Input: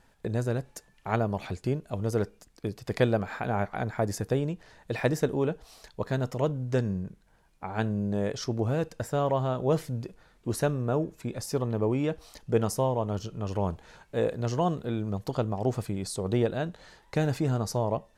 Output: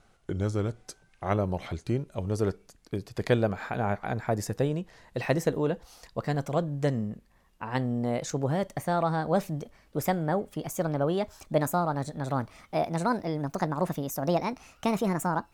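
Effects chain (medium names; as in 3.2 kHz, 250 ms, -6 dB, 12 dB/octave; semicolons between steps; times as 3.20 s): gliding tape speed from 84% -> 150%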